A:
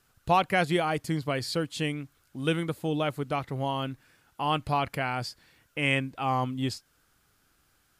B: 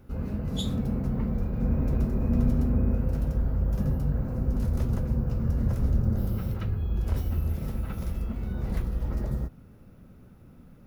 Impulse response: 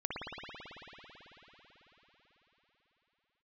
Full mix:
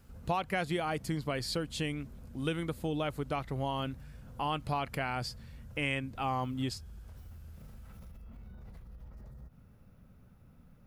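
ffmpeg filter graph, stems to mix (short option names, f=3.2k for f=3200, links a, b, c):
-filter_complex "[0:a]volume=-2dB[a];[1:a]equalizer=f=330:w=1.5:g=-8,acompressor=threshold=-29dB:ratio=6,alimiter=level_in=13dB:limit=-24dB:level=0:latency=1:release=82,volume=-13dB,volume=-6dB[b];[a][b]amix=inputs=2:normalize=0,acompressor=threshold=-30dB:ratio=3"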